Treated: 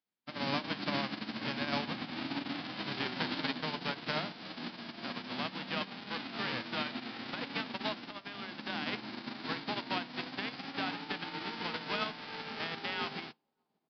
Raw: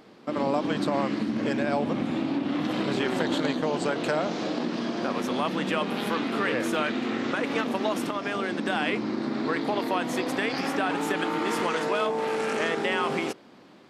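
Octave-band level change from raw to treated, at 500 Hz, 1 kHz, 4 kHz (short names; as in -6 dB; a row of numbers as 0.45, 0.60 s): -15.5, -10.0, -2.5 dB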